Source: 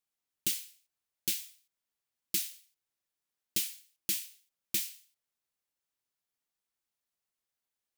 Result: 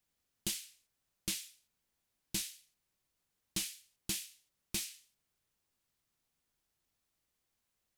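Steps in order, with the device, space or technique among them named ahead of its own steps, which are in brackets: compact cassette (soft clip -25.5 dBFS, distortion -13 dB; LPF 11000 Hz 12 dB/oct; wow and flutter; white noise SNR 38 dB); low shelf 230 Hz +11.5 dB

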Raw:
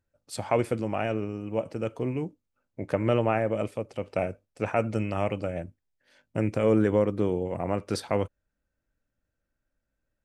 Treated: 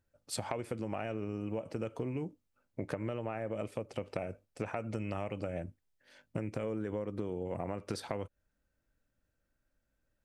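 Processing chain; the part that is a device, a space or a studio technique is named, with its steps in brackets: serial compression, leveller first (compressor 2.5:1, threshold -28 dBFS, peak gain reduction 7.5 dB; compressor, threshold -34 dBFS, peak gain reduction 10 dB); gain +1 dB

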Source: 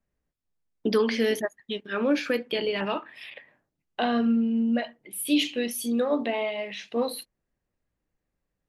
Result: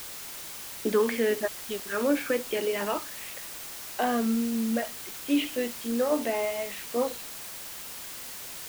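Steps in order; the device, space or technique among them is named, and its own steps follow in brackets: wax cylinder (BPF 250–2200 Hz; wow and flutter; white noise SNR 10 dB)

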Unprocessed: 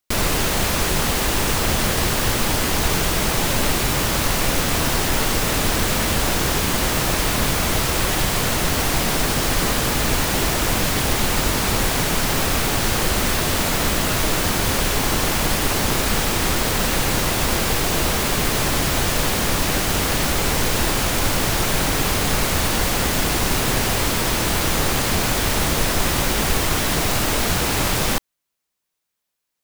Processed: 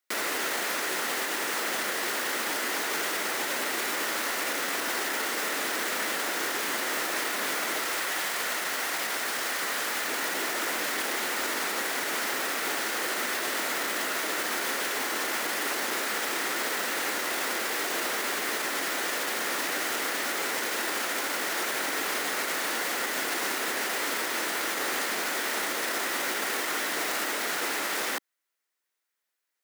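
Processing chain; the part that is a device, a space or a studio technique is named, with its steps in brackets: laptop speaker (HPF 290 Hz 24 dB/oct; bell 1400 Hz +5 dB 0.29 oct; bell 1900 Hz +7.5 dB 0.4 oct; limiter -16 dBFS, peak gain reduction 9 dB); 7.89–10.08 bell 310 Hz -5.5 dB 1.5 oct; gain -4.5 dB

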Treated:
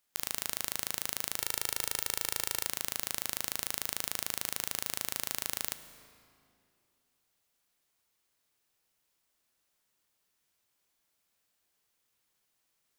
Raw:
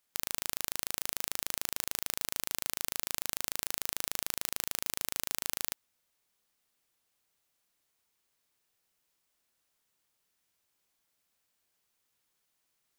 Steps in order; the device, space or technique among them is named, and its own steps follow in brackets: saturated reverb return (on a send at -8 dB: reverb RT60 2.3 s, pre-delay 11 ms + soft clip -37.5 dBFS, distortion -12 dB); 1.39–2.67 on the sum: comb 2.2 ms, depth 73%

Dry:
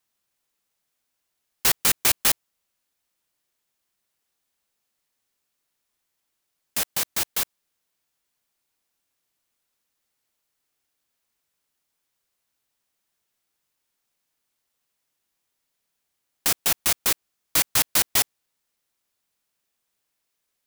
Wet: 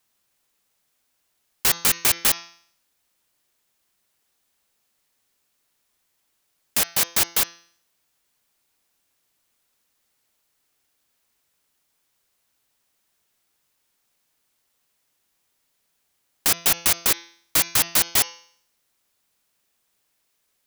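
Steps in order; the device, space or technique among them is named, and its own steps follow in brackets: de-hum 169.6 Hz, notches 38; soft clipper into limiter (soft clip -6.5 dBFS, distortion -26 dB; limiter -14.5 dBFS, peak gain reduction 6.5 dB); gain +6.5 dB

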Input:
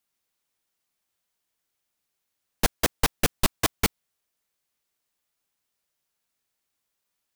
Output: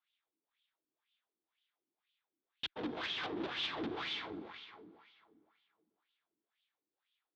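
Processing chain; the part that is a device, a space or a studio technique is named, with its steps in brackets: plate-style reverb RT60 2.5 s, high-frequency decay 0.85×, pre-delay 0.12 s, DRR 5.5 dB; wah-wah guitar rig (wah 2 Hz 280–3200 Hz, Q 3.2; tube stage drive 47 dB, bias 0.8; speaker cabinet 93–4500 Hz, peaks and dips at 320 Hz +6 dB, 570 Hz -5 dB, 3500 Hz +9 dB); gain +9 dB

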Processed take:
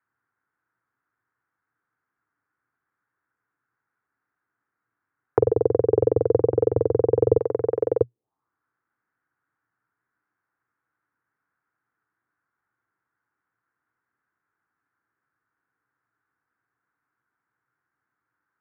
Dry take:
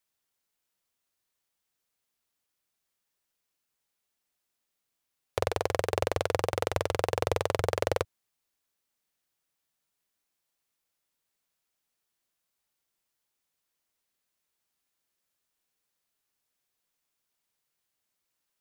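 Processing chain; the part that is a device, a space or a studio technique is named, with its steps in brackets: envelope filter bass rig (envelope low-pass 460–1500 Hz down, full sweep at -33.5 dBFS; speaker cabinet 76–2100 Hz, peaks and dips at 120 Hz +10 dB, 180 Hz -3 dB, 300 Hz +6 dB, 600 Hz -9 dB); 7.38–8.01 tilt +3.5 dB/oct; gain +4 dB

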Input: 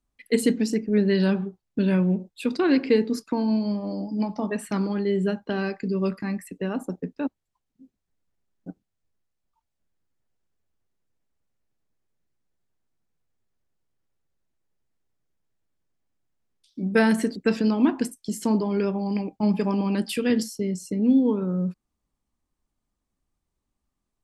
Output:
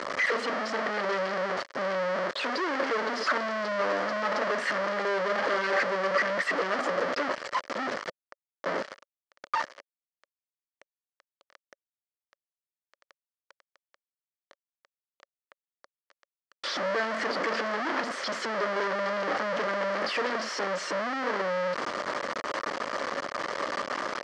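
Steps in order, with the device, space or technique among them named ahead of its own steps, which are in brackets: home computer beeper (infinite clipping; speaker cabinet 530–4400 Hz, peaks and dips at 560 Hz +9 dB, 800 Hz -5 dB, 1200 Hz +5 dB, 1800 Hz +5 dB, 2600 Hz -7 dB, 3700 Hz -9 dB); gain +2.5 dB

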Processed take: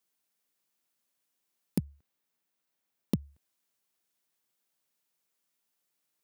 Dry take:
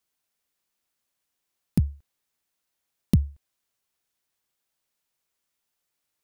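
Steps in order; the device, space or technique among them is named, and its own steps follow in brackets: Chebyshev high-pass 190 Hz, order 2; ASMR close-microphone chain (low shelf 190 Hz +5 dB; compressor 4:1, threshold -25 dBFS, peak gain reduction 10 dB; high shelf 8600 Hz +4 dB); 1.84–3.19 bell 9700 Hz -5 dB 2.3 oct; gain -1.5 dB

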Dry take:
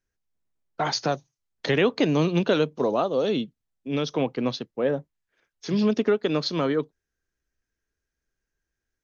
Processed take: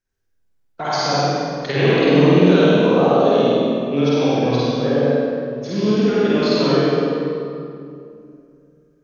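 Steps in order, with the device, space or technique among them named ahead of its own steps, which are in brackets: tunnel (flutter echo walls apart 8.5 m, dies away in 0.98 s; reverb RT60 2.5 s, pre-delay 42 ms, DRR -7 dB); 1.72–2.46 LPF 5900 Hz 12 dB/oct; gain -2.5 dB

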